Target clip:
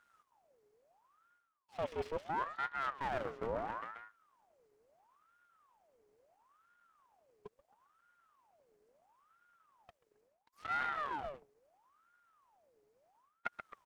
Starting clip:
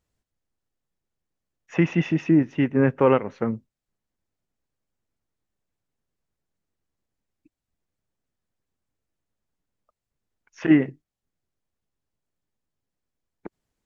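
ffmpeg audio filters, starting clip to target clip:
-filter_complex "[0:a]highshelf=f=4.1k:g=-6.5,asplit=2[a][b];[b]aecho=0:1:134|268|402|536:0.119|0.0594|0.0297|0.0149[c];[a][c]amix=inputs=2:normalize=0,acontrast=75,equalizer=f=3.2k:w=5:g=-12,areverse,acompressor=threshold=-38dB:ratio=8,areverse,aeval=exprs='abs(val(0))':c=same,aeval=exprs='val(0)*sin(2*PI*920*n/s+920*0.55/0.74*sin(2*PI*0.74*n/s))':c=same,volume=4dB"

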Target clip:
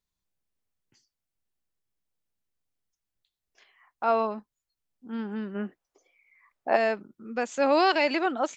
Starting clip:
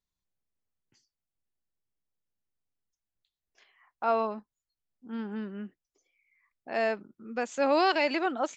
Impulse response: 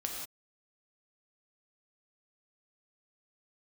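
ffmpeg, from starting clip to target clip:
-filter_complex "[0:a]asplit=3[a][b][c];[a]afade=t=out:st=5.54:d=0.02[d];[b]equalizer=f=790:w=0.51:g=13,afade=t=in:st=5.54:d=0.02,afade=t=out:st=6.75:d=0.02[e];[c]afade=t=in:st=6.75:d=0.02[f];[d][e][f]amix=inputs=3:normalize=0,volume=2.5dB"

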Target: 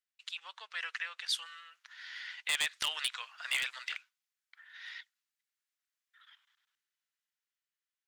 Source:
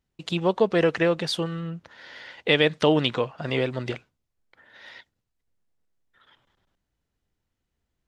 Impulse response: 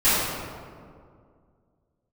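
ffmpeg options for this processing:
-filter_complex "[0:a]highpass=f=1.4k:w=0.5412,highpass=f=1.4k:w=1.3066,alimiter=limit=-17dB:level=0:latency=1:release=295,dynaudnorm=f=450:g=7:m=8dB,aeval=exprs='0.178*(abs(mod(val(0)/0.178+3,4)-2)-1)':c=same,asettb=1/sr,asplit=3[a][b][c];[a]atrim=end=1.274[d];[b]atrim=start=1.27:end=3.85,asetpts=PTS-STARTPTS,afade=t=in:d=0.004:c=qsin,afade=t=out:st=2.576:d=0.004:c=qsin,adynamicequalizer=threshold=0.0141:dfrequency=4400:dqfactor=0.7:tfrequency=4400:tqfactor=0.7:attack=5:release=100:ratio=0.375:range=3:mode=boostabove:tftype=highshelf[e];[c]atrim=start=3.846[f];[d][e]acrossfade=d=0.004:c1=hsin:c2=qsin[g];[g][f]acrossfade=d=0.004:c1=qsin:c2=hsin,volume=-8dB"

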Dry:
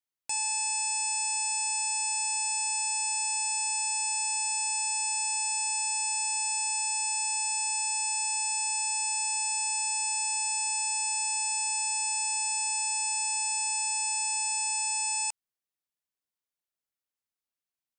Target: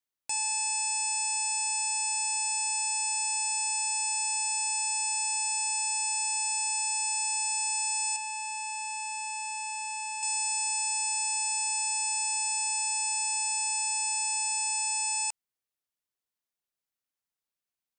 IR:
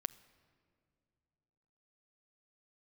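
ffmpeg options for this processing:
-filter_complex "[0:a]asettb=1/sr,asplit=3[a][b][c];[a]atrim=end=8.164[d];[b]atrim=start=8.16:end=10.23,asetpts=PTS-STARTPTS,afade=t=in:d=0.004:c=qsin,afade=t=out:st=2.066:d=0.004:c=qsin,acrossover=split=2900[e][f];[f]acompressor=threshold=-35dB:ratio=4:attack=1:release=60[g];[e][g]amix=inputs=2:normalize=0[h];[c]atrim=start=10.226[i];[d][h]acrossfade=d=0.004:c1=hsin:c2=qsin[j];[j][i]acrossfade=d=0.004:c1=qsin:c2=hsin"

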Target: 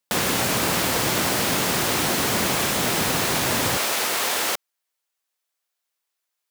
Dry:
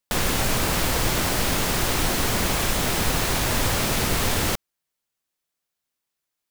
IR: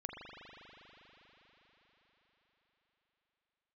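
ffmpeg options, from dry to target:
-af "asetnsamples=n=441:p=0,asendcmd='3.77 highpass f 510',highpass=140,volume=2dB"

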